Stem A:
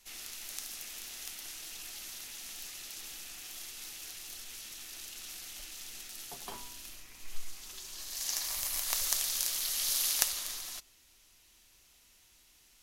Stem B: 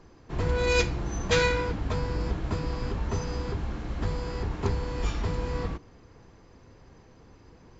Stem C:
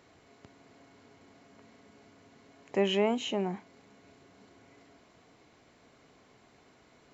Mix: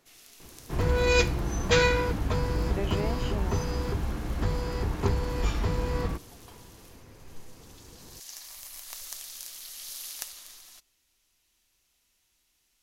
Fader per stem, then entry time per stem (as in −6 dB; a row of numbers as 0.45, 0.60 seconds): −9.0, +1.5, −7.0 decibels; 0.00, 0.40, 0.00 seconds